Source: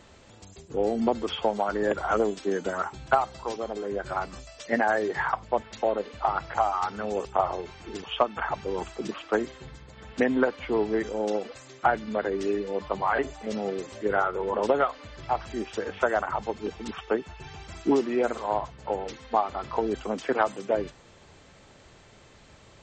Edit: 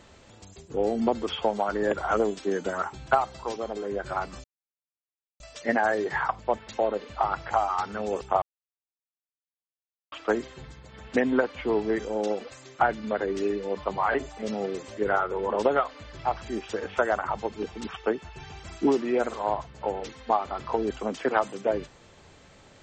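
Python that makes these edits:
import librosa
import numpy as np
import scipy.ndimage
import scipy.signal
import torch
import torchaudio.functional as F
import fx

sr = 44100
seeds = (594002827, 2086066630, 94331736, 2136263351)

y = fx.edit(x, sr, fx.insert_silence(at_s=4.44, length_s=0.96),
    fx.silence(start_s=7.46, length_s=1.7), tone=tone)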